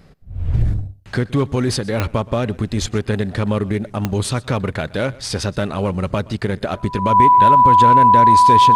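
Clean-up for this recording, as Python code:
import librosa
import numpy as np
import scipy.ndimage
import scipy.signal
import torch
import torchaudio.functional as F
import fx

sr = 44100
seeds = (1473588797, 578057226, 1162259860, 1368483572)

y = fx.fix_declick_ar(x, sr, threshold=10.0)
y = fx.notch(y, sr, hz=990.0, q=30.0)
y = fx.fix_echo_inverse(y, sr, delay_ms=123, level_db=-22.0)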